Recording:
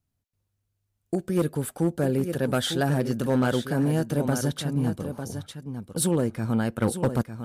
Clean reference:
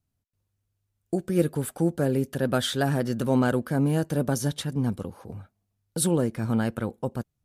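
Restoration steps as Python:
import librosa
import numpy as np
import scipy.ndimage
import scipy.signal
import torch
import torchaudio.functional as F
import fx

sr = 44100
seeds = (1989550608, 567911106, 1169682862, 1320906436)

y = fx.fix_declip(x, sr, threshold_db=-16.0)
y = fx.fix_echo_inverse(y, sr, delay_ms=902, level_db=-9.0)
y = fx.gain(y, sr, db=fx.steps((0.0, 0.0), (6.82, -7.0)))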